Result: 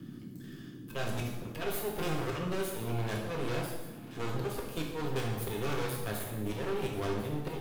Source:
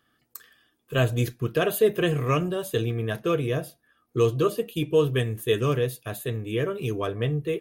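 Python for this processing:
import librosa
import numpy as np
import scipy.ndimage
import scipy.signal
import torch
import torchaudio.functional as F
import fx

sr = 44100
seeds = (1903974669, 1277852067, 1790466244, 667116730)

y = np.maximum(x, 0.0)
y = fx.auto_swell(y, sr, attack_ms=243.0)
y = np.clip(10.0 ** (28.5 / 20.0) * y, -1.0, 1.0) / 10.0 ** (28.5 / 20.0)
y = fx.echo_thinned(y, sr, ms=1041, feedback_pct=66, hz=920.0, wet_db=-18.0)
y = fx.rev_plate(y, sr, seeds[0], rt60_s=0.89, hf_ratio=0.85, predelay_ms=0, drr_db=-1.5)
y = fx.dmg_noise_band(y, sr, seeds[1], low_hz=110.0, high_hz=320.0, level_db=-52.0)
y = fx.band_squash(y, sr, depth_pct=40)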